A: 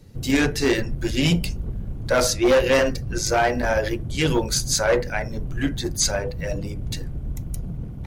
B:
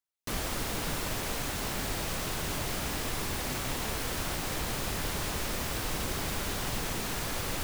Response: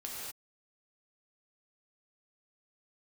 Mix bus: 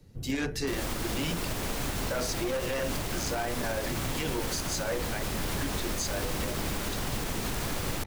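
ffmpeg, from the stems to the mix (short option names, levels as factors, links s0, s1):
-filter_complex "[0:a]volume=0.422[s0];[1:a]lowshelf=f=270:g=10,adelay=400,volume=1.12[s1];[s0][s1]amix=inputs=2:normalize=0,acrossover=split=200|3000[s2][s3][s4];[s2]acompressor=threshold=0.0282:ratio=4[s5];[s5][s3][s4]amix=inputs=3:normalize=0,alimiter=limit=0.0841:level=0:latency=1:release=79"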